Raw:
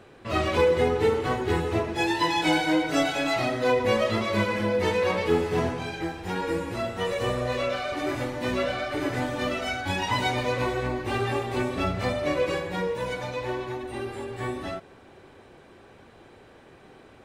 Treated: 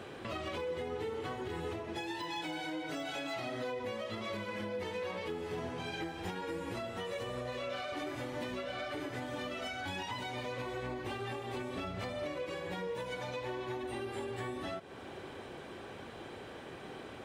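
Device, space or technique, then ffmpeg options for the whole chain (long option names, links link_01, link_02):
broadcast voice chain: -af "highpass=frequency=87:poles=1,deesser=0.75,acompressor=threshold=-43dB:ratio=3,equalizer=frequency=3200:width_type=o:width=0.23:gain=4.5,alimiter=level_in=10.5dB:limit=-24dB:level=0:latency=1:release=199,volume=-10.5dB,volume=4.5dB"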